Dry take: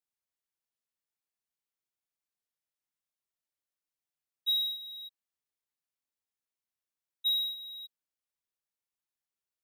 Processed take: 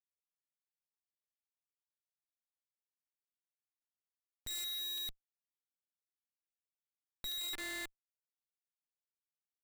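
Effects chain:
lower of the sound and its delayed copy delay 3.3 ms
0:04.64–0:07.38: flat-topped bell 3,500 Hz +15.5 dB
downward compressor 4 to 1, threshold −26 dBFS, peak gain reduction 7.5 dB
comparator with hysteresis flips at −45 dBFS
regular buffer underruns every 0.39 s, samples 256, repeat, from 0:00.68
level +1 dB

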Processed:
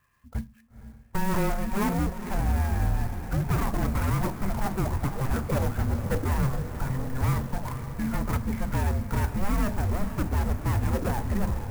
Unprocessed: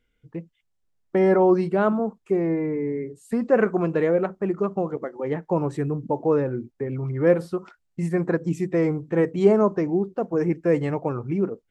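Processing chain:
0:09.31–0:10.92: parametric band 1,800 Hz −6 dB 1 octave
mid-hump overdrive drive 23 dB, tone 1,800 Hz, clips at −5.5 dBFS
soft clipping −19 dBFS, distortion −10 dB
feedback delay with all-pass diffusion 483 ms, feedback 70%, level −10.5 dB
on a send at −14 dB: convolution reverb RT60 0.35 s, pre-delay 3 ms
on the sum: single-sideband voice off tune −390 Hz 160–3,100 Hz
converter with an unsteady clock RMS 0.047 ms
level −3.5 dB

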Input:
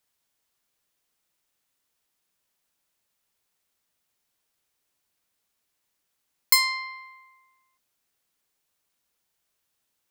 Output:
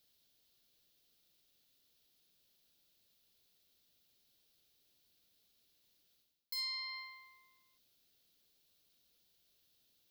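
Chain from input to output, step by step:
reversed playback
downward compressor, threshold −34 dBFS, peak gain reduction 19 dB
reversed playback
brickwall limiter −36 dBFS, peak gain reduction 13 dB
octave-band graphic EQ 1,000/2,000/4,000/8,000 Hz −12/−8/+8/−10 dB
level +5 dB

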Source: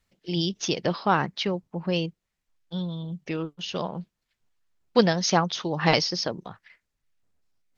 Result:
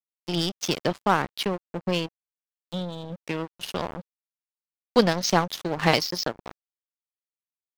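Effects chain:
high-pass filter 88 Hz 24 dB per octave
in parallel at +3 dB: downward compressor 5 to 1, threshold −33 dBFS, peak gain reduction 18 dB
on the sum: dead-zone distortion −28 dBFS

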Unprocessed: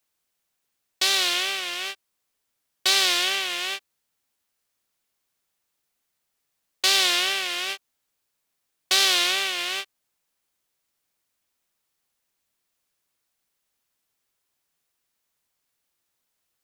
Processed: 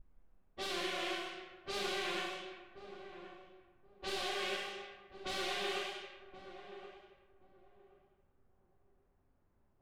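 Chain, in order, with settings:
pitch vibrato 0.44 Hz 62 cents
spectral tilt −4.5 dB per octave
hum removal 61.4 Hz, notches 15
downward compressor 10 to 1, threshold −38 dBFS, peak gain reduction 17.5 dB
hard clipping −33 dBFS, distortion −15 dB
four-comb reverb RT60 2.5 s, combs from 31 ms, DRR −4 dB
time stretch by phase vocoder 0.59×
low-pass that shuts in the quiet parts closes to 1,300 Hz, open at −40.5 dBFS
on a send: feedback echo with a low-pass in the loop 1,077 ms, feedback 25%, low-pass 890 Hz, level −9.5 dB
on the sum: level +3.5 dB

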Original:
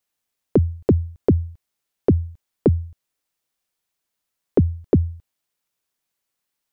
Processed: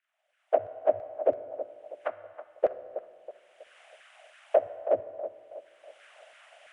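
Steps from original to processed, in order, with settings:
partials spread apart or drawn together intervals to 83%
camcorder AGC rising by 28 dB per second
0:02.12–0:04.66: low-shelf EQ 450 Hz −7 dB
harmonic and percussive parts rebalanced percussive +8 dB
drawn EQ curve 100 Hz 0 dB, 180 Hz −28 dB, 270 Hz −15 dB, 410 Hz −17 dB, 630 Hz +14 dB, 950 Hz −6 dB, 1,500 Hz +2 dB, 3,000 Hz +1 dB, 4,300 Hz −17 dB
auto-filter high-pass saw down 3 Hz 410–1,600 Hz
feedback echo with a band-pass in the loop 322 ms, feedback 43%, band-pass 670 Hz, level −11.5 dB
convolution reverb RT60 1.9 s, pre-delay 16 ms, DRR 12 dB
level −7 dB

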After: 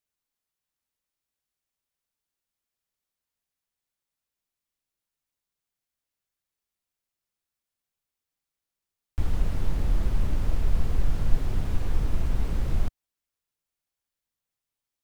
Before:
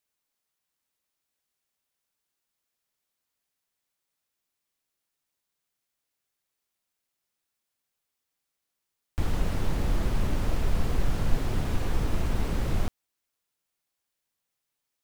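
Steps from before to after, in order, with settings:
low-shelf EQ 110 Hz +9.5 dB
level −5.5 dB

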